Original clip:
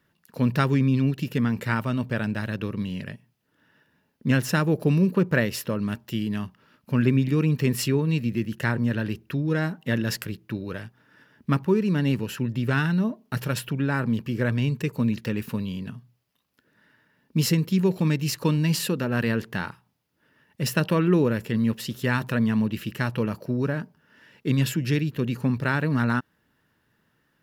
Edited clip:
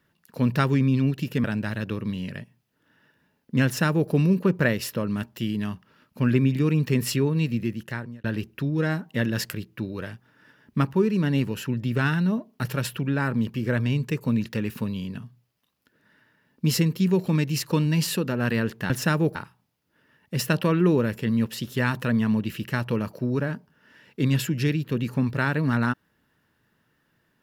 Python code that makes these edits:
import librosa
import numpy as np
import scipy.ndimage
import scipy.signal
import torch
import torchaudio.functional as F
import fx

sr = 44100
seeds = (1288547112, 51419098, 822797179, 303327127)

y = fx.edit(x, sr, fx.cut(start_s=1.44, length_s=0.72),
    fx.duplicate(start_s=4.37, length_s=0.45, to_s=19.62),
    fx.fade_out_span(start_s=8.3, length_s=0.66), tone=tone)